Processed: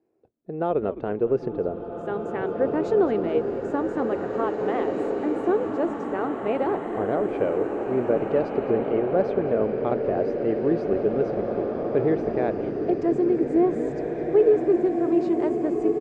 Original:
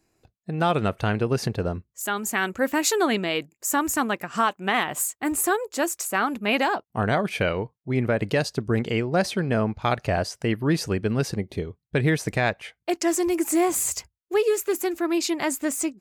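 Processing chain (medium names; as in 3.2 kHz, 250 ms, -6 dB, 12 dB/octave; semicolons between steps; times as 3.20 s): band-pass filter 430 Hz, Q 2.1; distance through air 90 m; on a send: frequency-shifting echo 212 ms, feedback 31%, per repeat -97 Hz, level -14.5 dB; on the sum: swelling reverb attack 2190 ms, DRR 1.5 dB; trim +4.5 dB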